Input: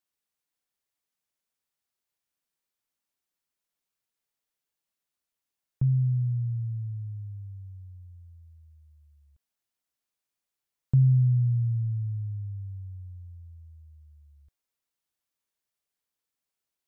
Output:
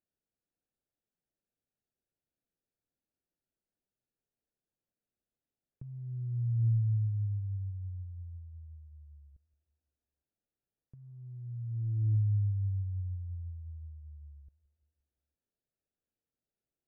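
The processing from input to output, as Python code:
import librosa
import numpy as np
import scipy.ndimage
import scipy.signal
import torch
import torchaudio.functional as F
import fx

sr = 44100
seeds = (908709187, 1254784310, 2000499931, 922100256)

p1 = fx.wiener(x, sr, points=41)
p2 = fx.over_compress(p1, sr, threshold_db=-31.0, ratio=-0.5)
y = p2 + fx.echo_feedback(p2, sr, ms=173, feedback_pct=59, wet_db=-21, dry=0)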